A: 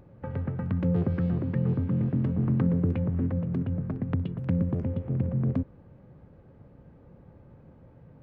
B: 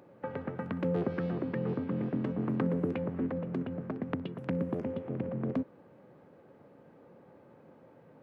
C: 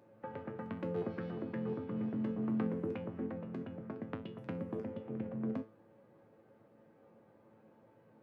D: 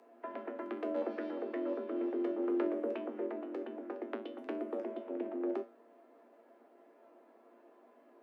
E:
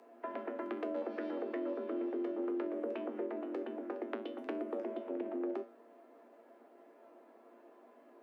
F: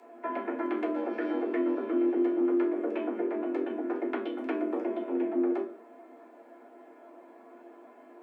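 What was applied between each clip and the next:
HPF 300 Hz 12 dB/oct; gain +2.5 dB
resonator 110 Hz, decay 0.31 s, harmonics all, mix 80%; gain +1.5 dB
frequency shift +130 Hz; gain +1.5 dB
compressor, threshold -36 dBFS, peak gain reduction 7.5 dB; gain +2 dB
reverb RT60 0.40 s, pre-delay 3 ms, DRR -5.5 dB; gain +2.5 dB

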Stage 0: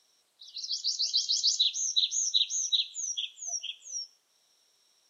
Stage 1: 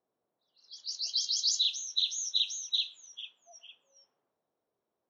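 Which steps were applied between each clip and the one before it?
low-pass opened by the level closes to 640 Hz, open at -22 dBFS; transient shaper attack -2 dB, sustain +3 dB; gain -1.5 dB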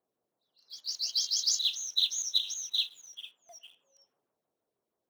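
LFO notch saw down 6.3 Hz 590–6400 Hz; in parallel at -10 dB: companded quantiser 4-bit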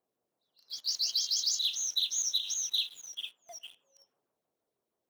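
compressor, threshold -31 dBFS, peak gain reduction 9.5 dB; sample leveller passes 1; gain +1.5 dB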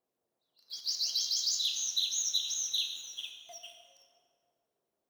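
plate-style reverb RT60 2.3 s, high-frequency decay 0.55×, DRR 3 dB; gain -2 dB

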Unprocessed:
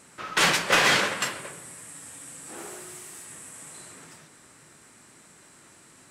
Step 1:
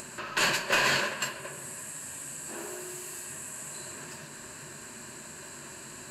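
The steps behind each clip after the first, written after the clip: ripple EQ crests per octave 1.4, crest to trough 9 dB; upward compressor, threshold -25 dBFS; gain -6 dB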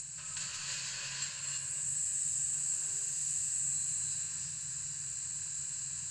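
compressor 10:1, threshold -33 dBFS, peak gain reduction 12.5 dB; EQ curve 160 Hz 0 dB, 240 Hz -29 dB, 2900 Hz -6 dB, 7700 Hz +9 dB, 14000 Hz -28 dB; non-linear reverb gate 0.36 s rising, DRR -4 dB; gain -4.5 dB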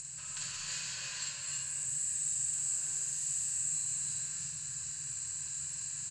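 doubler 48 ms -3 dB; gain -2 dB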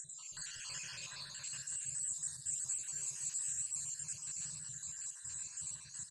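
random spectral dropouts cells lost 54%; on a send: tapped delay 43/61/95/154/354 ms -19/-20/-13/-15.5/-19 dB; on the sum: gain -3 dB

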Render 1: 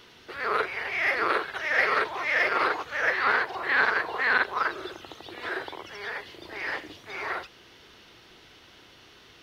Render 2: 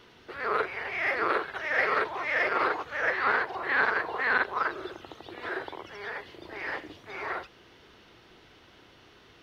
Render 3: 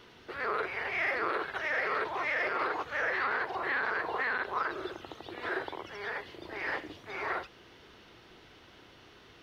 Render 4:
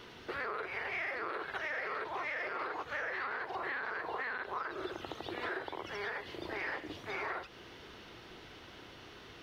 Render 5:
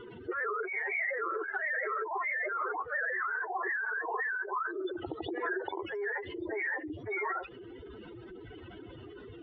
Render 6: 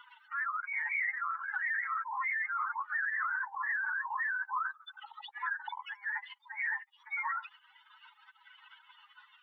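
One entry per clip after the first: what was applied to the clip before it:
high shelf 2500 Hz -8.5 dB
limiter -21.5 dBFS, peak gain reduction 10.5 dB
compressor, threshold -39 dBFS, peak gain reduction 11.5 dB; gain +3.5 dB
spectral contrast raised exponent 3.2; gain +5.5 dB
brick-wall FIR high-pass 800 Hz

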